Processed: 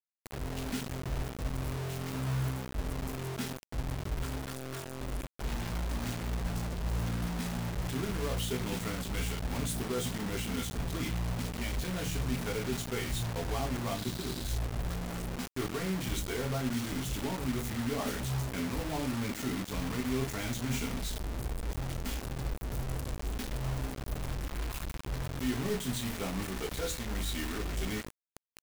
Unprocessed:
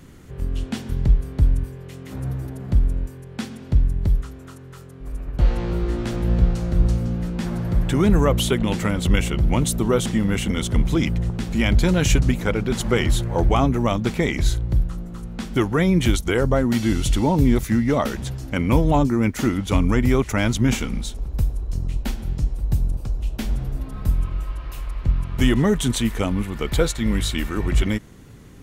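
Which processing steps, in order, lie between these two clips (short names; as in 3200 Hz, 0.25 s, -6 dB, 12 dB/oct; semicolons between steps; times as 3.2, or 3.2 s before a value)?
early reflections 16 ms -6.5 dB, 38 ms -10.5 dB; reverse; compressor 6:1, threshold -25 dBFS, peak gain reduction 16 dB; reverse; spectral repair 13.97–14.46, 420–5100 Hz after; reverb RT60 0.30 s, pre-delay 3 ms, DRR 3 dB; bit-crush 5-bit; gain -8.5 dB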